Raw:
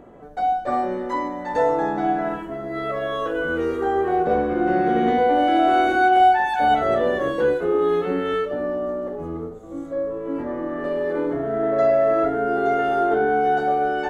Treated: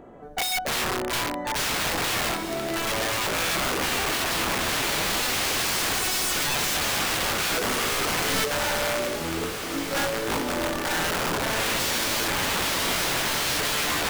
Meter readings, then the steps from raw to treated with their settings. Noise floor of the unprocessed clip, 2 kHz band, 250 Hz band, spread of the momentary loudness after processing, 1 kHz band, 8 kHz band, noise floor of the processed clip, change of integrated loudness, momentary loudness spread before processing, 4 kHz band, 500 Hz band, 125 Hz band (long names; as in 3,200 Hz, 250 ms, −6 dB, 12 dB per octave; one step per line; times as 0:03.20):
−33 dBFS, +2.0 dB, −7.5 dB, 4 LU, −9.5 dB, can't be measured, −31 dBFS, −3.0 dB, 11 LU, +14.0 dB, −10.0 dB, +1.0 dB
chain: mains-hum notches 60/120/180/240/300/360/420/480/540/600 Hz
wrap-around overflow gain 21.5 dB
on a send: feedback delay with all-pass diffusion 1,673 ms, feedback 42%, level −7.5 dB